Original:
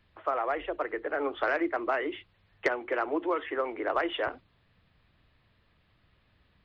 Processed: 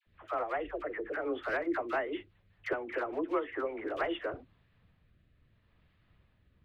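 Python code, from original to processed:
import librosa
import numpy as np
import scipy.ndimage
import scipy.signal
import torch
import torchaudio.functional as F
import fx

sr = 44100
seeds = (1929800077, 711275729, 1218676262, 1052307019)

p1 = fx.bass_treble(x, sr, bass_db=4, treble_db=-9)
p2 = np.clip(10.0 ** (22.0 / 20.0) * p1, -1.0, 1.0) / 10.0 ** (22.0 / 20.0)
p3 = p1 + (p2 * librosa.db_to_amplitude(-3.0))
p4 = fx.rotary_switch(p3, sr, hz=5.0, then_hz=0.75, switch_at_s=3.57)
p5 = fx.dispersion(p4, sr, late='lows', ms=66.0, hz=920.0)
y = p5 * librosa.db_to_amplitude(-6.5)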